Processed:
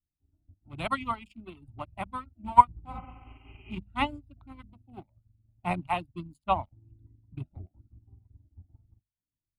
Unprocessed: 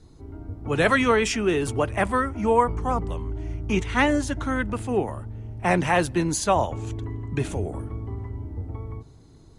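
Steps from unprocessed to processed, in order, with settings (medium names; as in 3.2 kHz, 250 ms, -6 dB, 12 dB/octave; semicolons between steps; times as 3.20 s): local Wiener filter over 41 samples; reverb removal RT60 0.7 s; hum notches 50/100/150/200/250 Hz; spectral replace 2.96–3.69 s, 240–3200 Hz both; static phaser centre 1.7 kHz, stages 6; upward expansion 2.5:1, over -47 dBFS; trim +7 dB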